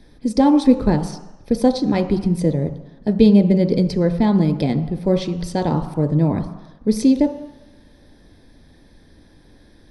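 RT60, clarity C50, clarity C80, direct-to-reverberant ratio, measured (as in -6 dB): 1.1 s, 11.0 dB, 13.0 dB, 7.0 dB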